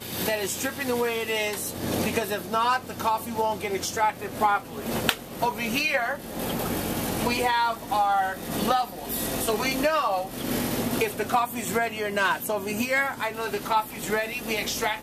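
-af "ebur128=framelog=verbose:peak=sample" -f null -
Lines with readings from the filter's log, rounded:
Integrated loudness:
  I:         -26.2 LUFS
  Threshold: -36.2 LUFS
Loudness range:
  LRA:         1.2 LU
  Threshold: -46.1 LUFS
  LRA low:   -26.6 LUFS
  LRA high:  -25.4 LUFS
Sample peak:
  Peak:       -6.6 dBFS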